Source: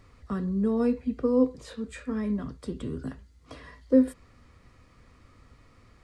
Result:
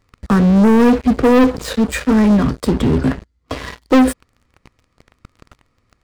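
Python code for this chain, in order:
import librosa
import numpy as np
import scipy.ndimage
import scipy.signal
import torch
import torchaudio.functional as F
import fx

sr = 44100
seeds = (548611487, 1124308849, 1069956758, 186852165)

y = fx.high_shelf(x, sr, hz=fx.line((2.7, 7800.0), (3.58, 5500.0)), db=-10.0, at=(2.7, 3.58), fade=0.02)
y = fx.leveller(y, sr, passes=5)
y = y * 10.0 ** (3.0 / 20.0)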